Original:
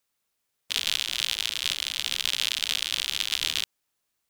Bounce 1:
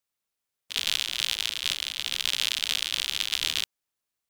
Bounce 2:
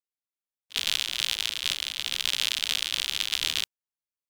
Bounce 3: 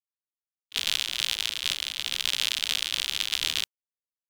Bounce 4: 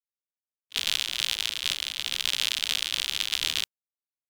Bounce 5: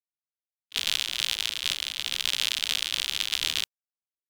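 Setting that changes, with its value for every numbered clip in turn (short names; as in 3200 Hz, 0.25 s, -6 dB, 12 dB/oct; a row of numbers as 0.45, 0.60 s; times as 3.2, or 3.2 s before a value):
gate, range: -7, -22, -60, -35, -48 dB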